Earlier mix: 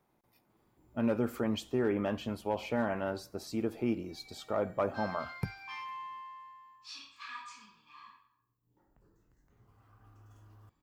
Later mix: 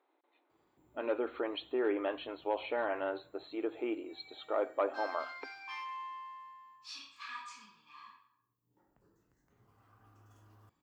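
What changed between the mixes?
speech: add linear-phase brick-wall band-pass 260–4,300 Hz
master: add high-pass filter 160 Hz 6 dB per octave

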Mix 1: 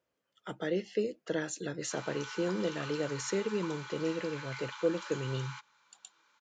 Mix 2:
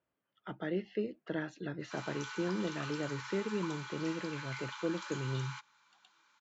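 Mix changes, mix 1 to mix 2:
speech: add high-frequency loss of the air 320 metres
master: add parametric band 490 Hz −8.5 dB 0.38 octaves

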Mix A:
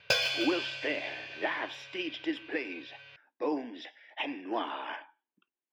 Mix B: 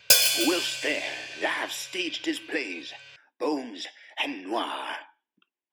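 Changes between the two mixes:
speech +3.0 dB
master: remove high-frequency loss of the air 260 metres

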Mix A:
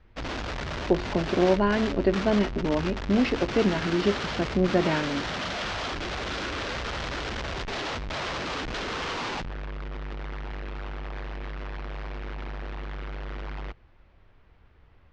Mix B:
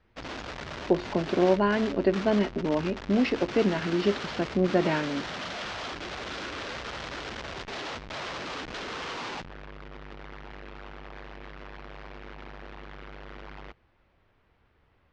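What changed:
background −4.0 dB
master: add low-shelf EQ 82 Hz −11 dB

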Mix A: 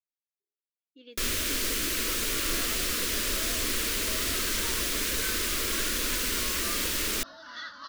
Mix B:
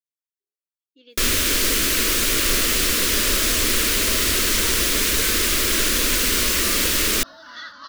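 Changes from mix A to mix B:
speech: add bass and treble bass −5 dB, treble +6 dB
first sound +9.5 dB
second sound +3.5 dB

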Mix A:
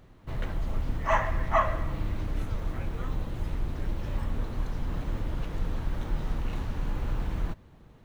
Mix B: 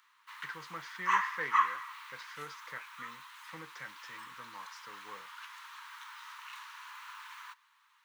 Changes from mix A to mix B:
speech +10.0 dB
background: add Butterworth high-pass 940 Hz 96 dB per octave

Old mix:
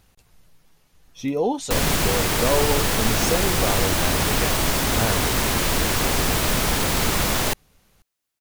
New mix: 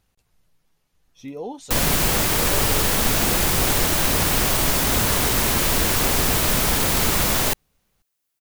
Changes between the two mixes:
speech −10.0 dB
background: add high-shelf EQ 9,700 Hz +7 dB

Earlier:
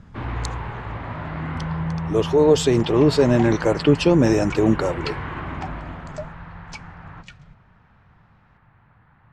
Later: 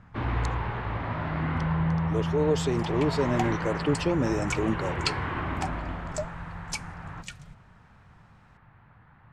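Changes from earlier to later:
speech −10.0 dB
second sound: remove high-frequency loss of the air 140 metres

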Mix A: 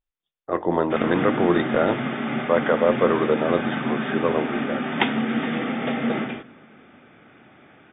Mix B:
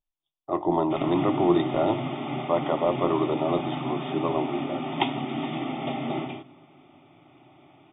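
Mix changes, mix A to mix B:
speech: send +6.0 dB
master: add phaser with its sweep stopped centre 320 Hz, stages 8

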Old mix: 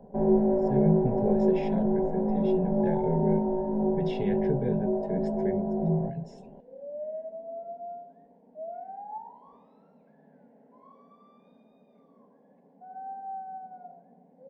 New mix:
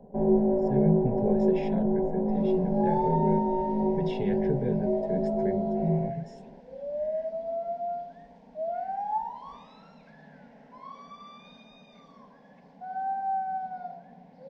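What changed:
first sound: add parametric band 1,400 Hz −5 dB 0.98 octaves
second sound: remove resonant band-pass 370 Hz, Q 1.5

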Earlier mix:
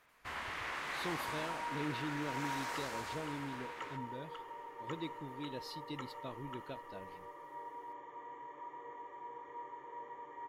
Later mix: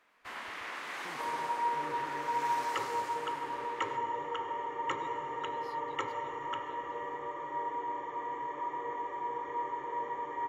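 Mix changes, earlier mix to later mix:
speech −11.5 dB
first sound: add high-pass filter 190 Hz 24 dB per octave
second sound +11.5 dB

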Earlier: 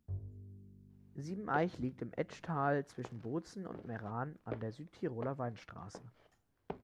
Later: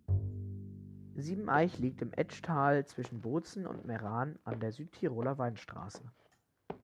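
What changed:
speech +4.5 dB
first sound +11.0 dB
master: add high-pass filter 65 Hz

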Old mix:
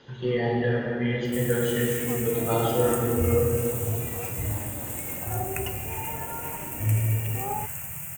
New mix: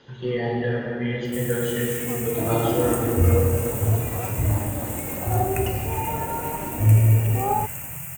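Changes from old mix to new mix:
first sound: send +9.0 dB
second sound +8.5 dB

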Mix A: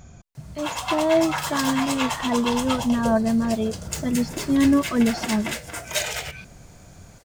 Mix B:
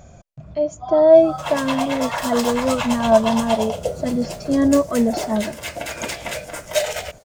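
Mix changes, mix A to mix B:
background: entry +0.80 s
master: add parametric band 600 Hz +12 dB 0.6 octaves

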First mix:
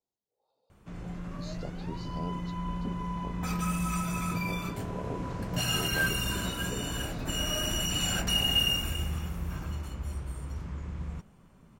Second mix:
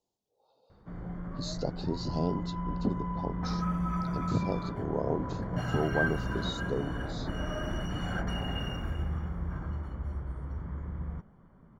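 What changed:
speech +9.0 dB
background: add Savitzky-Golay smoothing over 41 samples

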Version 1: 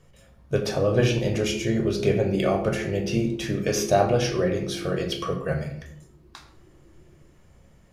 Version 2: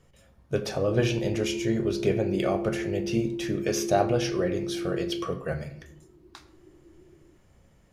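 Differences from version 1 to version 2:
speech: send −8.0 dB
background +4.0 dB

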